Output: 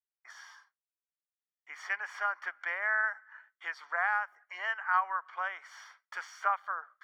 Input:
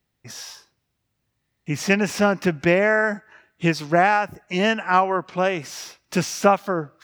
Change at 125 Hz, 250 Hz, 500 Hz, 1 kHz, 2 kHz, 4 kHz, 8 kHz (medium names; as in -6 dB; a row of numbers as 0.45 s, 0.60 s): under -40 dB, under -40 dB, -26.5 dB, -11.0 dB, -7.5 dB, -19.5 dB, under -20 dB